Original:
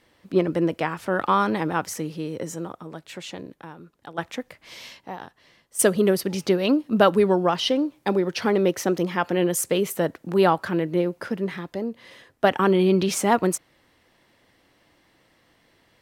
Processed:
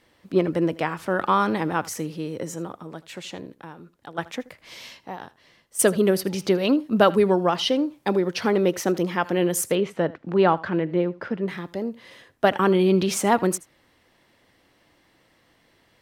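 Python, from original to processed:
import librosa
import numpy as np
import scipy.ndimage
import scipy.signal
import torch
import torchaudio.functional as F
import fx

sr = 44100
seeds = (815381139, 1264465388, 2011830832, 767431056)

y = fx.lowpass(x, sr, hz=3200.0, slope=12, at=(9.75, 11.48))
y = y + 10.0 ** (-20.5 / 20.0) * np.pad(y, (int(79 * sr / 1000.0), 0))[:len(y)]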